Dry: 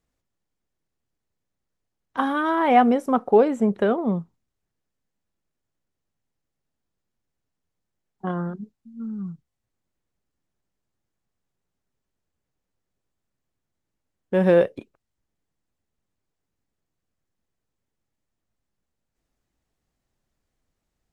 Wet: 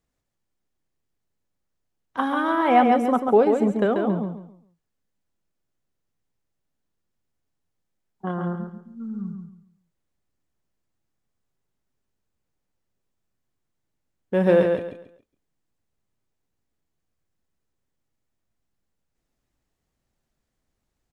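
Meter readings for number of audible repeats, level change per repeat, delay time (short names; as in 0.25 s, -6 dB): 3, -11.0 dB, 0.138 s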